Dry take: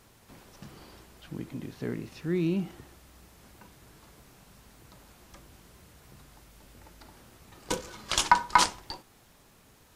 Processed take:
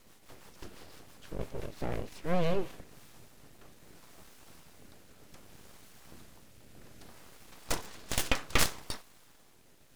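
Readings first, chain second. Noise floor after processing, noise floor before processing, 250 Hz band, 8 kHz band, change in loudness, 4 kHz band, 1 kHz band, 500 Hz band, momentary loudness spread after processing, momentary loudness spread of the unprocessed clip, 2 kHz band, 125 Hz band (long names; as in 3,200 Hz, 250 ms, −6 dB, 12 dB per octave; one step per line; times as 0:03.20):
−59 dBFS, −59 dBFS, −6.5 dB, −3.5 dB, −5.5 dB, −4.5 dB, −13.0 dB, +0.5 dB, 24 LU, 20 LU, −4.5 dB, −2.5 dB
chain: rotating-speaker cabinet horn 6 Hz, later 0.65 Hz, at 0:02.29
full-wave rectification
level +3.5 dB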